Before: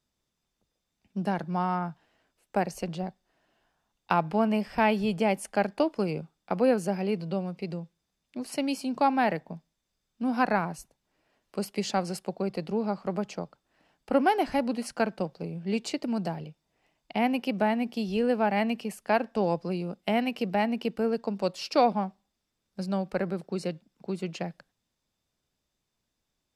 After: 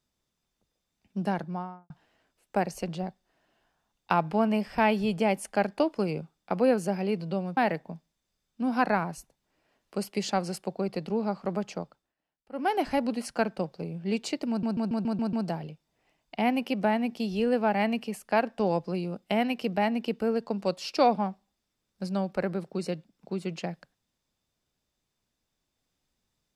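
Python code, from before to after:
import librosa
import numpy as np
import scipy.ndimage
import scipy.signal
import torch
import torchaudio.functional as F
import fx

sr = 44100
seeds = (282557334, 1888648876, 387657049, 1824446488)

y = fx.studio_fade_out(x, sr, start_s=1.3, length_s=0.6)
y = fx.edit(y, sr, fx.cut(start_s=7.57, length_s=1.61),
    fx.fade_down_up(start_s=13.38, length_s=1.12, db=-21.0, fade_s=0.37, curve='qsin'),
    fx.stutter(start_s=16.1, slice_s=0.14, count=7), tone=tone)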